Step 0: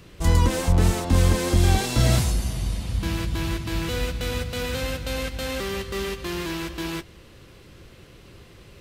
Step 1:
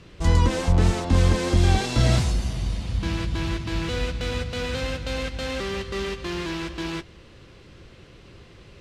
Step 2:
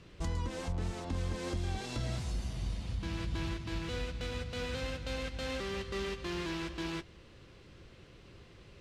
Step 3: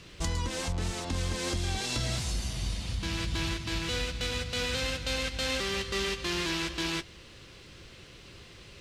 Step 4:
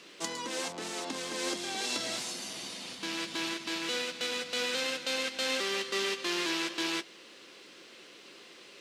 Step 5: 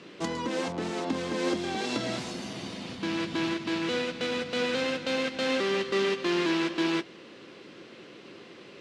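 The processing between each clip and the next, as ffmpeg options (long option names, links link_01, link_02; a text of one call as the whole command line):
ffmpeg -i in.wav -af "lowpass=6400" out.wav
ffmpeg -i in.wav -af "alimiter=limit=-19.5dB:level=0:latency=1:release=420,volume=-7.5dB" out.wav
ffmpeg -i in.wav -af "highshelf=frequency=2000:gain=11,volume=3dB" out.wav
ffmpeg -i in.wav -af "highpass=frequency=250:width=0.5412,highpass=frequency=250:width=1.3066" out.wav
ffmpeg -i in.wav -af "aemphasis=mode=reproduction:type=riaa,volume=4.5dB" out.wav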